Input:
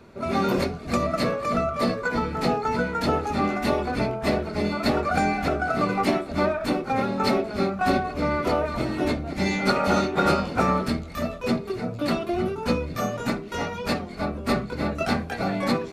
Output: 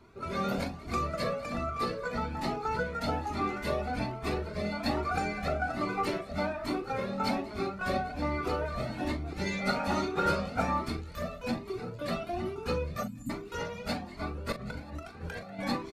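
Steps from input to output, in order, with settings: 13.03–13.3 spectral delete 310–6800 Hz; 14.52–15.59 negative-ratio compressor -35 dBFS, ratio -1; doubler 40 ms -10 dB; on a send: thinning echo 0.191 s, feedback 63%, high-pass 910 Hz, level -22 dB; on the sum: cascading flanger rising 1.2 Hz; gain -3.5 dB

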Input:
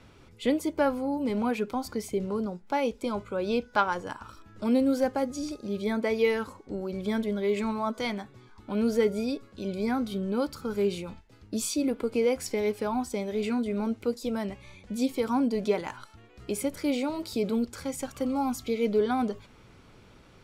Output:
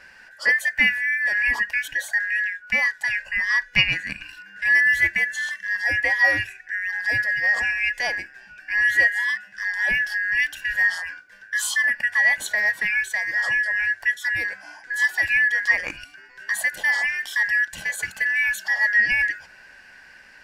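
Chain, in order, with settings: four-band scrambler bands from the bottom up 2143; gain +6 dB

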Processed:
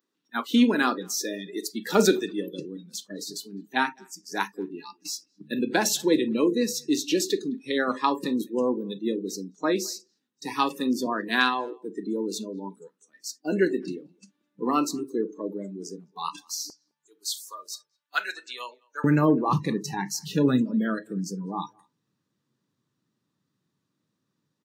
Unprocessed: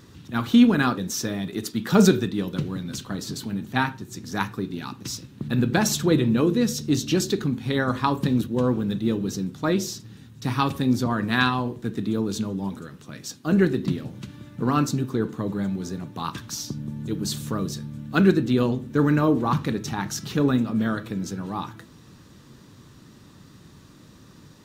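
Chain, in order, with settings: spectral noise reduction 28 dB; HPF 260 Hz 24 dB/oct, from 16.7 s 850 Hz, from 19.04 s 120 Hz; speakerphone echo 0.21 s, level -29 dB

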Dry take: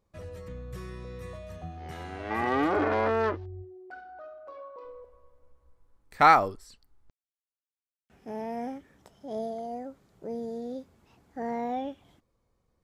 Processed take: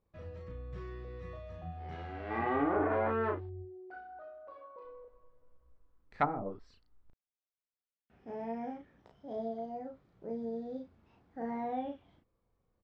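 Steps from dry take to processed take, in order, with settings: air absorption 210 m; doubler 35 ms -3 dB; treble ducked by the level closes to 350 Hz, closed at -15.5 dBFS; gain -5.5 dB

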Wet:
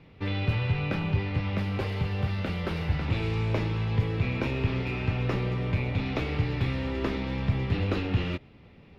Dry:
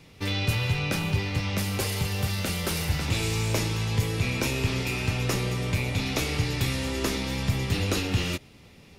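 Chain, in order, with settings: air absorption 370 m

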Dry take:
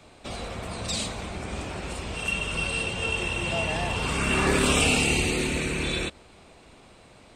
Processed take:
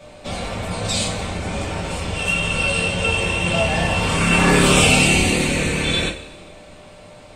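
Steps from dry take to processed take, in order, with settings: whine 600 Hz -52 dBFS; two-slope reverb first 0.24 s, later 1.5 s, from -18 dB, DRR -5 dB; gain +2 dB

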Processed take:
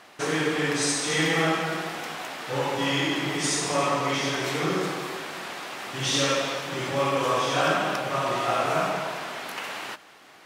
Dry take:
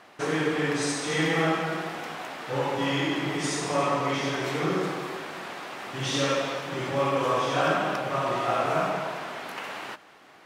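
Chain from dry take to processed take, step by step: high shelf 2800 Hz +7.5 dB

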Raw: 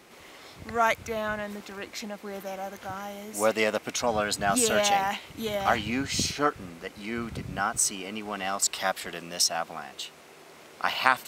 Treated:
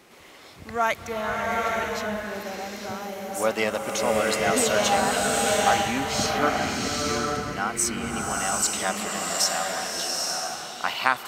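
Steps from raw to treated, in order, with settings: bloom reverb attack 0.86 s, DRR -1.5 dB

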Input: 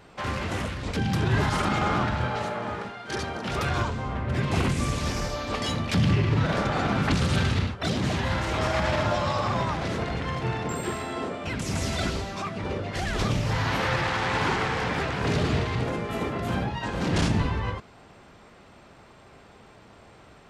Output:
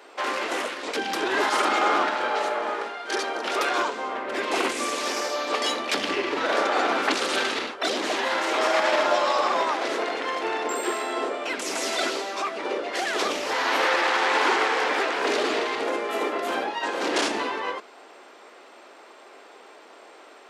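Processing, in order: inverse Chebyshev high-pass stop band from 160 Hz, stop band 40 dB; gain +5 dB

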